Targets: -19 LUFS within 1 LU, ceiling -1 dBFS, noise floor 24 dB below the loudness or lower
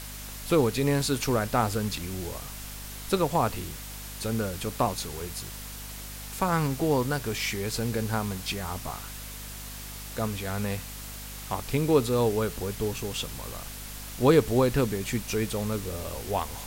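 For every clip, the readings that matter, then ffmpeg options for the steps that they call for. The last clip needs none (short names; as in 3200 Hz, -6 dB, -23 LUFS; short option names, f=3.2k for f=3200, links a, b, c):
hum 50 Hz; harmonics up to 250 Hz; hum level -42 dBFS; noise floor -40 dBFS; noise floor target -53 dBFS; loudness -29.0 LUFS; peak -8.0 dBFS; loudness target -19.0 LUFS
-> -af "bandreject=f=50:t=h:w=4,bandreject=f=100:t=h:w=4,bandreject=f=150:t=h:w=4,bandreject=f=200:t=h:w=4,bandreject=f=250:t=h:w=4"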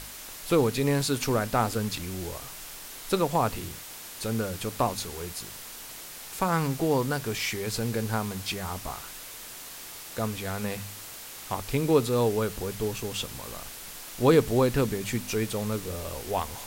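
hum none; noise floor -43 dBFS; noise floor target -53 dBFS
-> -af "afftdn=nr=10:nf=-43"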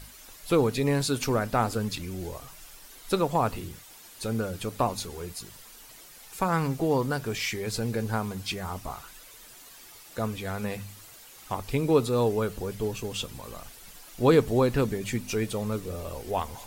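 noise floor -50 dBFS; noise floor target -53 dBFS
-> -af "afftdn=nr=6:nf=-50"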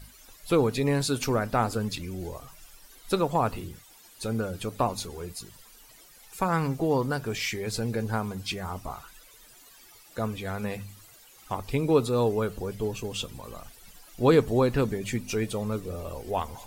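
noise floor -54 dBFS; loudness -28.5 LUFS; peak -8.0 dBFS; loudness target -19.0 LUFS
-> -af "volume=9.5dB,alimiter=limit=-1dB:level=0:latency=1"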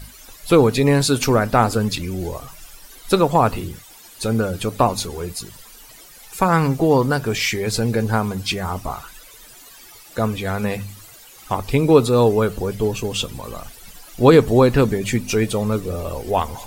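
loudness -19.0 LUFS; peak -1.0 dBFS; noise floor -44 dBFS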